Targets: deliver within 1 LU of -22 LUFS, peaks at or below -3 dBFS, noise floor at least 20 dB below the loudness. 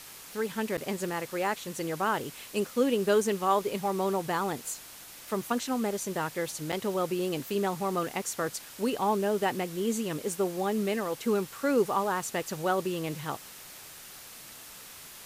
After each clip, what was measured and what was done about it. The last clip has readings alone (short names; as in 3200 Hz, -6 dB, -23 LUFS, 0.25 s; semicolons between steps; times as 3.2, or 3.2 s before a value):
dropouts 2; longest dropout 7.2 ms; noise floor -47 dBFS; noise floor target -51 dBFS; loudness -30.5 LUFS; peak -12.5 dBFS; loudness target -22.0 LUFS
-> interpolate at 0.77/6.72, 7.2 ms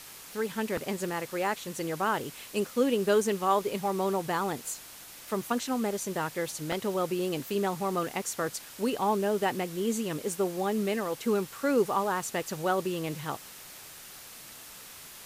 dropouts 0; noise floor -47 dBFS; noise floor target -51 dBFS
-> denoiser 6 dB, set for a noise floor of -47 dBFS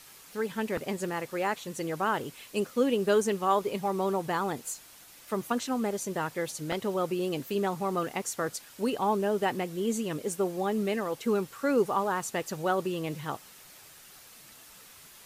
noise floor -52 dBFS; loudness -30.5 LUFS; peak -12.5 dBFS; loudness target -22.0 LUFS
-> gain +8.5 dB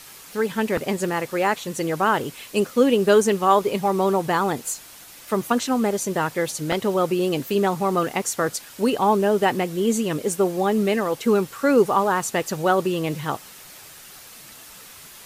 loudness -22.0 LUFS; peak -4.0 dBFS; noise floor -44 dBFS